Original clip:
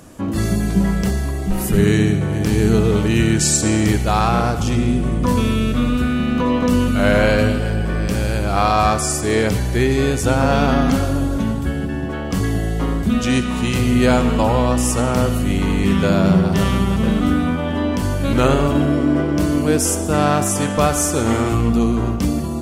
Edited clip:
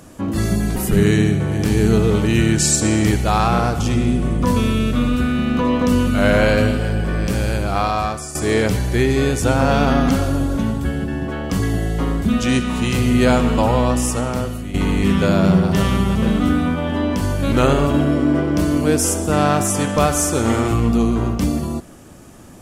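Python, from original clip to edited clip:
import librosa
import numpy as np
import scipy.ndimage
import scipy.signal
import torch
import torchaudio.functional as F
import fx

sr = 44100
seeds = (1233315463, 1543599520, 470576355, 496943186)

y = fx.edit(x, sr, fx.cut(start_s=0.76, length_s=0.81),
    fx.fade_out_to(start_s=8.33, length_s=0.83, floor_db=-13.0),
    fx.fade_out_to(start_s=14.67, length_s=0.88, floor_db=-12.0), tone=tone)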